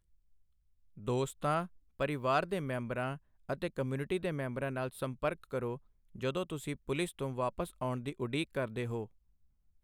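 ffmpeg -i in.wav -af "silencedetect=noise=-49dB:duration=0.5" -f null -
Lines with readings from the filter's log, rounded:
silence_start: 0.00
silence_end: 0.97 | silence_duration: 0.97
silence_start: 9.06
silence_end: 9.84 | silence_duration: 0.77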